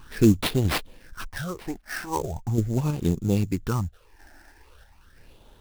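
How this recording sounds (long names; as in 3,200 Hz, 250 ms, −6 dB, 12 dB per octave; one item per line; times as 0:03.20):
sample-and-hold tremolo 3.1 Hz
phaser sweep stages 8, 0.4 Hz, lowest notch 140–2,100 Hz
aliases and images of a low sample rate 7,100 Hz, jitter 20%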